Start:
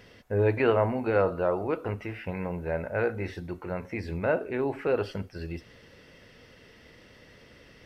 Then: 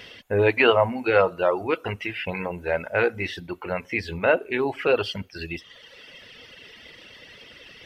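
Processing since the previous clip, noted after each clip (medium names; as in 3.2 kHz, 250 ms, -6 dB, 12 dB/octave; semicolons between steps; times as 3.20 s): peaking EQ 3.1 kHz +10.5 dB 0.96 oct; reverb removal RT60 1.2 s; bass shelf 270 Hz -7.5 dB; trim +7.5 dB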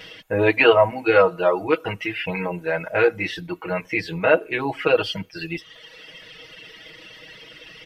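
comb 6.3 ms, depth 97%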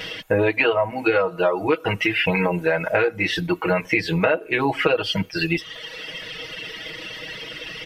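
compression 10:1, threshold -25 dBFS, peak gain reduction 16 dB; trim +9 dB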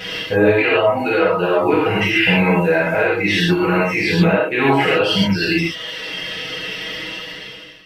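fade out at the end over 0.97 s; peak limiter -12 dBFS, peak gain reduction 7.5 dB; gated-style reverb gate 160 ms flat, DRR -7.5 dB; trim -1 dB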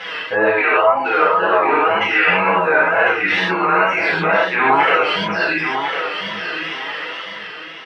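wow and flutter 76 cents; band-pass filter 1.2 kHz, Q 1.6; on a send: feedback delay 1050 ms, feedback 25%, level -8 dB; on the sum: trim +8 dB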